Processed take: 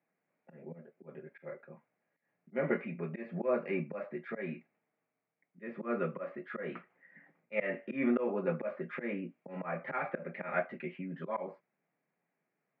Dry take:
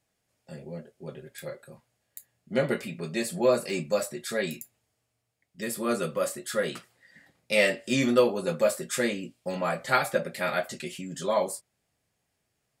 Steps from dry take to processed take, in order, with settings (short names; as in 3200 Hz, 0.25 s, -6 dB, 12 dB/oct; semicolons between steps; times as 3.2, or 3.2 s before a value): auto swell 0.154 s; Chebyshev band-pass 160–2300 Hz, order 4; gain -2.5 dB